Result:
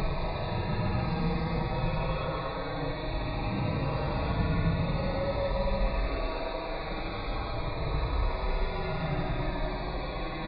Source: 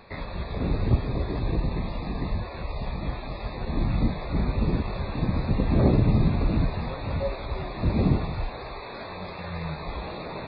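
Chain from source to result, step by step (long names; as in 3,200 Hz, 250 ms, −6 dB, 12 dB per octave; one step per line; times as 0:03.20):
comb filter 6.3 ms, depth 56%
extreme stretch with random phases 9.9×, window 0.10 s, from 0:06.70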